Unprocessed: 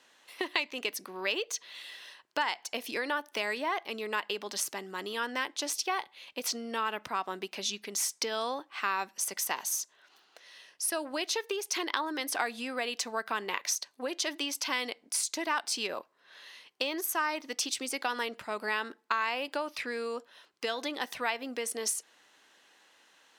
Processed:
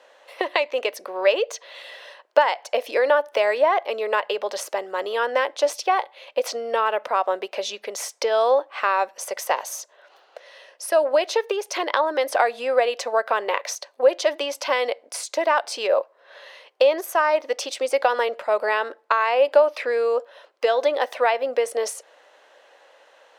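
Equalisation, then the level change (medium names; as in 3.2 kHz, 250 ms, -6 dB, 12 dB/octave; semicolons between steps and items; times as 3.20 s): resonant high-pass 550 Hz, resonance Q 5; treble shelf 3.8 kHz -12 dB; +8.5 dB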